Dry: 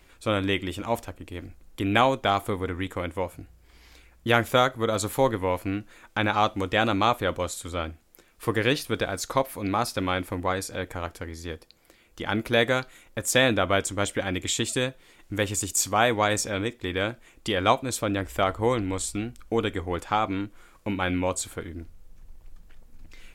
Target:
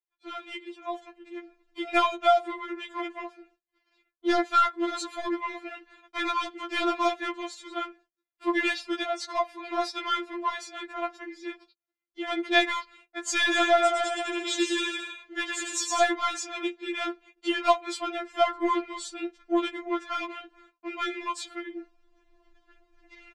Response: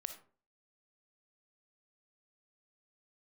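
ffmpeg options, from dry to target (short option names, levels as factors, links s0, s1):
-filter_complex "[0:a]adynamicsmooth=sensitivity=6:basefreq=4300,lowpass=5800,agate=range=0.0178:threshold=0.00316:ratio=16:detection=peak,highpass=f=100:p=1,lowshelf=f=340:g=-7,asplit=3[s0][s1][s2];[s0]afade=t=out:st=13.51:d=0.02[s3];[s1]aecho=1:1:110|198|268.4|324.7|369.8:0.631|0.398|0.251|0.158|0.1,afade=t=in:st=13.51:d=0.02,afade=t=out:st=16.02:d=0.02[s4];[s2]afade=t=in:st=16.02:d=0.02[s5];[s3][s4][s5]amix=inputs=3:normalize=0,asoftclip=type=tanh:threshold=0.237,dynaudnorm=f=790:g=3:m=4.47,afftfilt=real='re*4*eq(mod(b,16),0)':imag='im*4*eq(mod(b,16),0)':win_size=2048:overlap=0.75,volume=0.422"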